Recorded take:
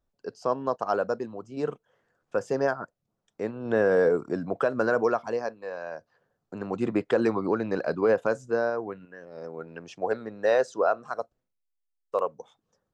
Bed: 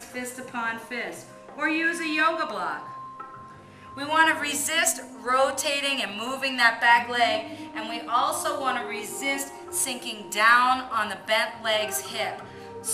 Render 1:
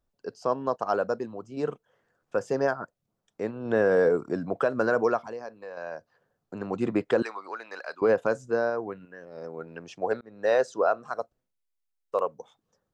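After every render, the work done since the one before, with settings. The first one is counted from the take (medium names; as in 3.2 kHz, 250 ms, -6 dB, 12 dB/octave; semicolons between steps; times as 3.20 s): 5.18–5.77 s: compression 2:1, threshold -39 dBFS; 7.22–8.02 s: high-pass 1.1 kHz; 10.21–10.61 s: fade in equal-power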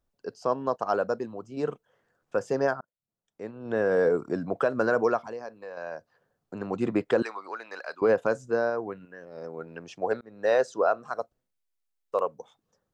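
2.81–4.23 s: fade in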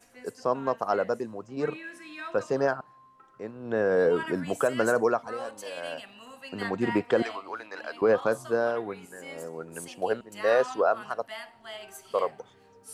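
add bed -17 dB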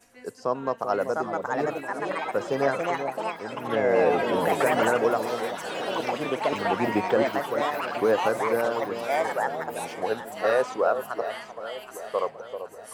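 ever faster or slower copies 798 ms, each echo +4 st, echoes 3; echo whose repeats swap between lows and highs 387 ms, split 920 Hz, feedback 67%, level -8 dB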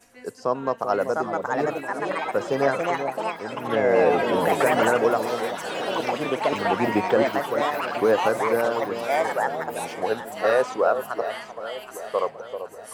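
trim +2.5 dB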